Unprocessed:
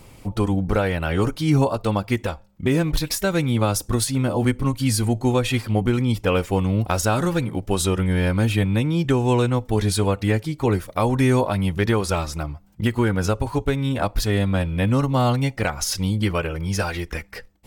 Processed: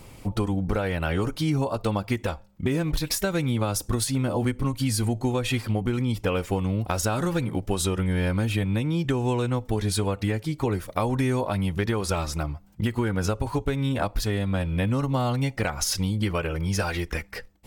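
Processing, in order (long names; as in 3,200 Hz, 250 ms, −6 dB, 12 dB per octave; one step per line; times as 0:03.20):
downward compressor, threshold −21 dBFS, peak gain reduction 7.5 dB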